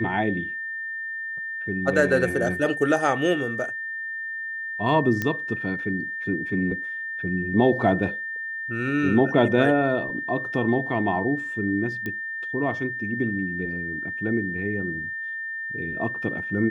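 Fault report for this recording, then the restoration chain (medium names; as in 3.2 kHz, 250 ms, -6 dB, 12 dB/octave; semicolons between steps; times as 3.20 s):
whine 1.8 kHz -29 dBFS
5.22 s: pop -12 dBFS
12.06 s: pop -18 dBFS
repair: de-click; band-stop 1.8 kHz, Q 30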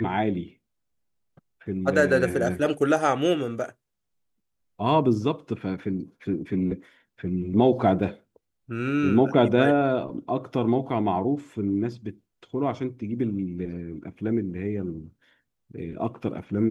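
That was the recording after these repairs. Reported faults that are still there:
nothing left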